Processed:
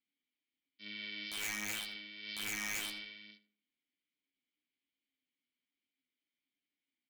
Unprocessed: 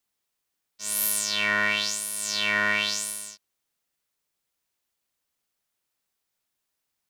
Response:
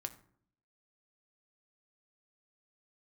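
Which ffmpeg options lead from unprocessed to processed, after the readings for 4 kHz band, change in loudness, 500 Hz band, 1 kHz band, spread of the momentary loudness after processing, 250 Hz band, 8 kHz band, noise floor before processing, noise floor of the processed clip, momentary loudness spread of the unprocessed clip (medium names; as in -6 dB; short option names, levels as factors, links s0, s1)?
-13.5 dB, -15.0 dB, -20.0 dB, -19.5 dB, 14 LU, -11.5 dB, -16.5 dB, -81 dBFS, under -85 dBFS, 11 LU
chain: -filter_complex "[0:a]aresample=11025,aresample=44100,asplit=3[s0][s1][s2];[s0]bandpass=f=270:t=q:w=8,volume=1[s3];[s1]bandpass=f=2290:t=q:w=8,volume=0.501[s4];[s2]bandpass=f=3010:t=q:w=8,volume=0.355[s5];[s3][s4][s5]amix=inputs=3:normalize=0,aeval=exprs='(mod(29.9*val(0)+1,2)-1)/29.9':c=same,flanger=delay=9.3:depth=4.1:regen=38:speed=1.2:shape=triangular,asplit=2[s6][s7];[s7]adelay=81,lowpass=f=1900:p=1,volume=0.224,asplit=2[s8][s9];[s9]adelay=81,lowpass=f=1900:p=1,volume=0.37,asplit=2[s10][s11];[s11]adelay=81,lowpass=f=1900:p=1,volume=0.37,asplit=2[s12][s13];[s13]adelay=81,lowpass=f=1900:p=1,volume=0.37[s14];[s8][s10][s12][s14]amix=inputs=4:normalize=0[s15];[s6][s15]amix=inputs=2:normalize=0,alimiter=level_in=6.68:limit=0.0631:level=0:latency=1:release=87,volume=0.15,volume=3.16"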